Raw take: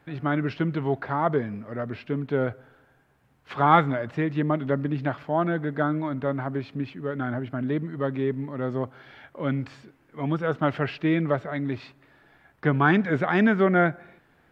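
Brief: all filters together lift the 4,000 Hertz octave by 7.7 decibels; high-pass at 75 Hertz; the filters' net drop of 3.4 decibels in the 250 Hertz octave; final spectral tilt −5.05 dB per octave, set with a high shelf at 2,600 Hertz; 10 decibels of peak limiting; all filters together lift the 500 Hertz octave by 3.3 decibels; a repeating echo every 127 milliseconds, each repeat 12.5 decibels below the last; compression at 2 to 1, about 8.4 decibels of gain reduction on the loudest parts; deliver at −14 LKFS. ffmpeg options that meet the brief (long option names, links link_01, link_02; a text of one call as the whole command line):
ffmpeg -i in.wav -af "highpass=75,equalizer=frequency=250:width_type=o:gain=-7,equalizer=frequency=500:width_type=o:gain=6,highshelf=frequency=2600:gain=3,equalizer=frequency=4000:width_type=o:gain=7.5,acompressor=threshold=-25dB:ratio=2,alimiter=limit=-21.5dB:level=0:latency=1,aecho=1:1:127|254|381:0.237|0.0569|0.0137,volume=18.5dB" out.wav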